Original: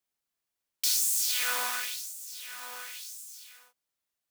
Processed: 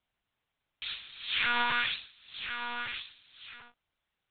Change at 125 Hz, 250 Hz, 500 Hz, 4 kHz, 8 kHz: n/a, +13.5 dB, 0.0 dB, 0.0 dB, under -40 dB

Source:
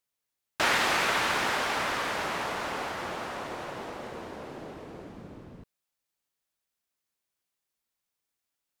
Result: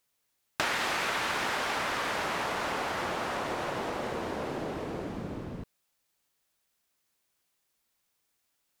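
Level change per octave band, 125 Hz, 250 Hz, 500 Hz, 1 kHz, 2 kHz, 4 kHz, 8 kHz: +3.0, +2.0, +0.5, -1.5, -2.5, -3.0, -2.5 dB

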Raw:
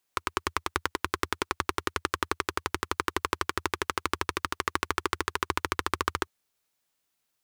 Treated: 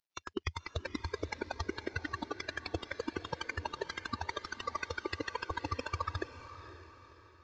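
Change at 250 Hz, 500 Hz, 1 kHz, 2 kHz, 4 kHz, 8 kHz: -5.0, -5.5, -10.0, -8.0, -9.0, -14.0 dB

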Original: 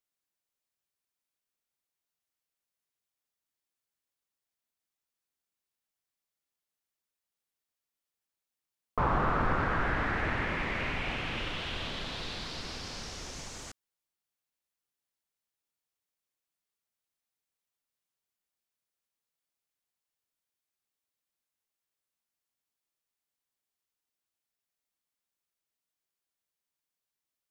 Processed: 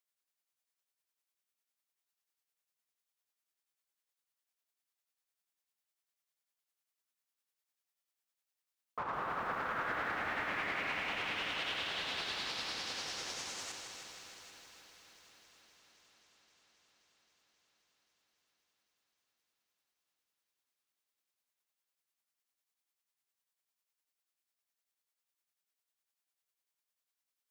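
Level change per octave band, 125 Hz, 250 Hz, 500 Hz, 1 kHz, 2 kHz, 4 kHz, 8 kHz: -18.5, -12.0, -7.5, -5.5, -3.0, +0.5, +1.0 dB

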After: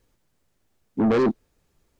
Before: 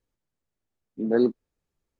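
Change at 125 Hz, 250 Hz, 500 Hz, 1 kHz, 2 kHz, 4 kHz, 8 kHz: +9.5 dB, +3.5 dB, +1.5 dB, +12.0 dB, +5.0 dB, +5.5 dB, n/a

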